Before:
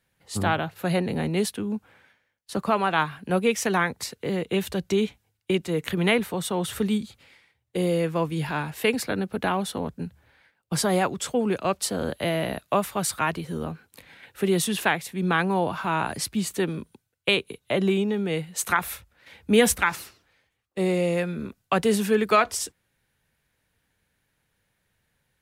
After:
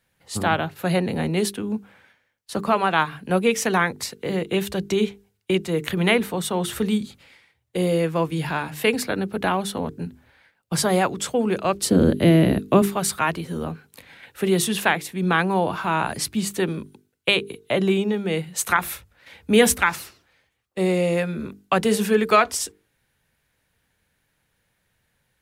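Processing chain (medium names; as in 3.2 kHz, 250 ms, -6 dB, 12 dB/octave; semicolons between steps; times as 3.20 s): 11.75–12.82 s: resonant low shelf 490 Hz +10.5 dB, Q 1.5; hum notches 50/100/150/200/250/300/350/400/450 Hz; trim +3 dB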